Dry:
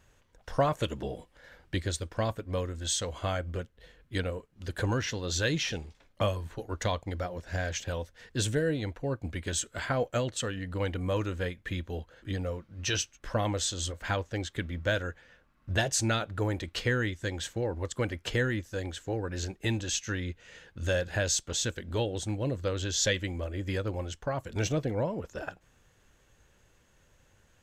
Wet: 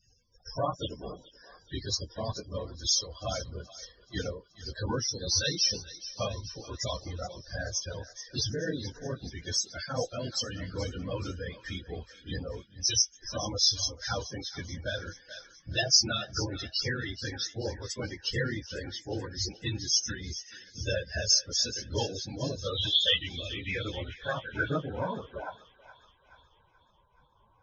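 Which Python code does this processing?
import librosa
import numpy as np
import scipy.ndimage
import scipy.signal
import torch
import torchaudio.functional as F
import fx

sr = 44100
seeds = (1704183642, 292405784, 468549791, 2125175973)

y = fx.phase_scramble(x, sr, seeds[0], window_ms=50)
y = scipy.signal.sosfilt(scipy.signal.butter(2, 11000.0, 'lowpass', fs=sr, output='sos'), y)
y = fx.high_shelf(y, sr, hz=5600.0, db=11.5)
y = fx.comb(y, sr, ms=6.2, depth=0.58, at=(15.09, 15.95))
y = fx.dynamic_eq(y, sr, hz=1100.0, q=1.6, threshold_db=-47.0, ratio=4.0, max_db=7, at=(21.99, 22.73))
y = fx.filter_sweep_lowpass(y, sr, from_hz=5200.0, to_hz=1000.0, start_s=22.07, end_s=25.43, q=6.1)
y = fx.spec_topn(y, sr, count=32)
y = fx.echo_thinned(y, sr, ms=429, feedback_pct=61, hz=1000.0, wet_db=-14.0)
y = fx.am_noise(y, sr, seeds[1], hz=5.7, depth_pct=65)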